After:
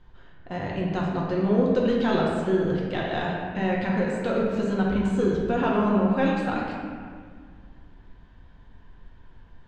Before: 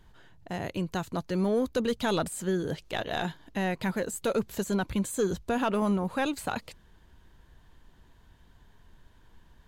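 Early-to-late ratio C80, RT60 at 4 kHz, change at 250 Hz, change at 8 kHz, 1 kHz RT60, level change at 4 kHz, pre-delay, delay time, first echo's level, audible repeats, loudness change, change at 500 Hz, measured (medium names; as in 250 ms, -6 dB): 2.0 dB, 1.2 s, +6.5 dB, under -10 dB, 1.8 s, -0.5 dB, 4 ms, no echo, no echo, no echo, +5.5 dB, +5.5 dB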